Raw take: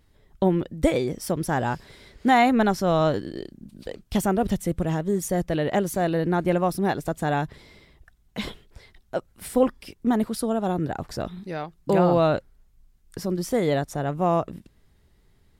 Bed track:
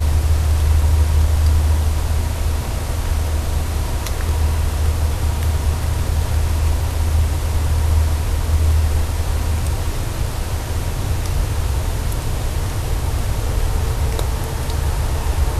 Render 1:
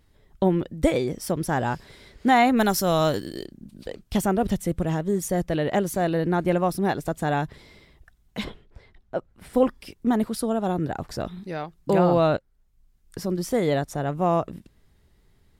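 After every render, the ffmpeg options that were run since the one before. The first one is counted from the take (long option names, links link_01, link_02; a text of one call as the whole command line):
ffmpeg -i in.wav -filter_complex "[0:a]asplit=3[link_01][link_02][link_03];[link_01]afade=type=out:start_time=2.56:duration=0.02[link_04];[link_02]aemphasis=mode=production:type=75fm,afade=type=in:start_time=2.56:duration=0.02,afade=type=out:start_time=3.44:duration=0.02[link_05];[link_03]afade=type=in:start_time=3.44:duration=0.02[link_06];[link_04][link_05][link_06]amix=inputs=3:normalize=0,asplit=3[link_07][link_08][link_09];[link_07]afade=type=out:start_time=8.43:duration=0.02[link_10];[link_08]lowpass=frequency=1600:poles=1,afade=type=in:start_time=8.43:duration=0.02,afade=type=out:start_time=9.53:duration=0.02[link_11];[link_09]afade=type=in:start_time=9.53:duration=0.02[link_12];[link_10][link_11][link_12]amix=inputs=3:normalize=0,asplit=2[link_13][link_14];[link_13]atrim=end=12.37,asetpts=PTS-STARTPTS,afade=type=out:start_time=12.366:duration=0.004:curve=hsin:silence=0.188365[link_15];[link_14]atrim=start=12.37,asetpts=PTS-STARTPTS,afade=type=in:duration=0.82:silence=0.188365[link_16];[link_15][link_16]concat=n=2:v=0:a=1" out.wav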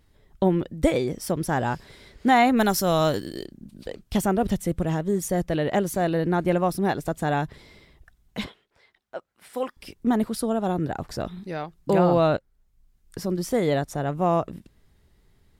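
ffmpeg -i in.wav -filter_complex "[0:a]asettb=1/sr,asplit=3[link_01][link_02][link_03];[link_01]atrim=end=8.464[link_04];[link_02]atrim=start=8.46:end=9.77,asetpts=PTS-STARTPTS,afade=type=in:duration=0.004:curve=qsin,afade=type=out:start_time=1.306:duration=0.004:curve=qsin,highpass=frequency=1200:poles=1[link_05];[link_03]atrim=start=9.766[link_06];[link_04][link_05]acrossfade=duration=0.004:curve1=hsin:curve2=qsin[link_07];[link_07][link_06]acrossfade=duration=0.004:curve1=qsin:curve2=hsin" out.wav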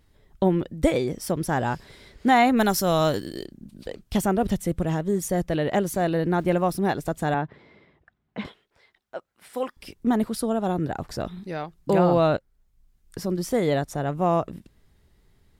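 ffmpeg -i in.wav -filter_complex "[0:a]asettb=1/sr,asplit=3[link_01][link_02][link_03];[link_01]atrim=end=6.314[link_04];[link_02]atrim=start=6.31:end=6.8,asetpts=PTS-STARTPTS,afade=type=in:duration=0.004:curve=qsin,afade=type=out:start_time=0.486:duration=0.004:curve=qsin,aeval=exprs='val(0)*gte(abs(val(0)),0.00422)':channel_layout=same[link_05];[link_03]atrim=start=6.796[link_06];[link_04][link_05]acrossfade=duration=0.004:curve1=hsin:curve2=qsin[link_07];[link_07][link_06]acrossfade=duration=0.004:curve1=qsin:curve2=hsin,asettb=1/sr,asplit=3[link_08][link_09][link_10];[link_08]atrim=end=7.344[link_11];[link_09]atrim=start=7.34:end=8.45,asetpts=PTS-STARTPTS,afade=type=in:duration=0.004:curve=qsin,afade=type=out:start_time=1.106:duration=0.004:curve=qsin,highpass=140,lowpass=2100[link_12];[link_10]atrim=start=8.446[link_13];[link_11][link_12]acrossfade=duration=0.004:curve1=hsin:curve2=qsin[link_14];[link_14][link_13]acrossfade=duration=0.004:curve1=qsin:curve2=hsin" out.wav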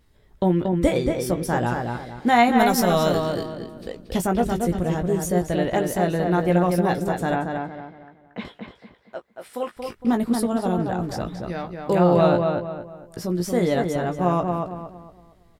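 ffmpeg -i in.wav -filter_complex "[0:a]asplit=2[link_01][link_02];[link_02]adelay=17,volume=-7dB[link_03];[link_01][link_03]amix=inputs=2:normalize=0,asplit=2[link_04][link_05];[link_05]adelay=230,lowpass=frequency=2700:poles=1,volume=-4dB,asplit=2[link_06][link_07];[link_07]adelay=230,lowpass=frequency=2700:poles=1,volume=0.36,asplit=2[link_08][link_09];[link_09]adelay=230,lowpass=frequency=2700:poles=1,volume=0.36,asplit=2[link_10][link_11];[link_11]adelay=230,lowpass=frequency=2700:poles=1,volume=0.36,asplit=2[link_12][link_13];[link_13]adelay=230,lowpass=frequency=2700:poles=1,volume=0.36[link_14];[link_04][link_06][link_08][link_10][link_12][link_14]amix=inputs=6:normalize=0" out.wav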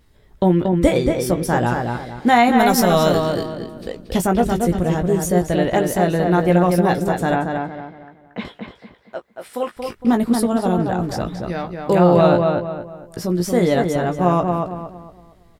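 ffmpeg -i in.wav -af "volume=4.5dB,alimiter=limit=-3dB:level=0:latency=1" out.wav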